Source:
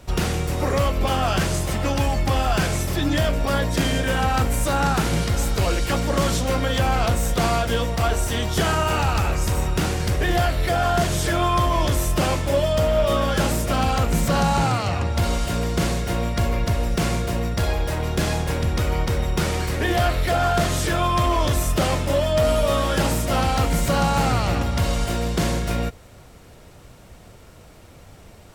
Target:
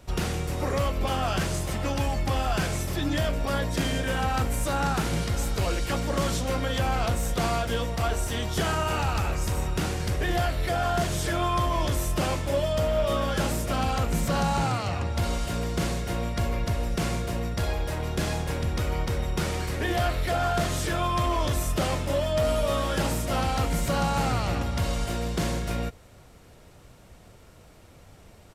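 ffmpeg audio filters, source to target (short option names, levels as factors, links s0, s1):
-af "aresample=32000,aresample=44100,volume=0.531"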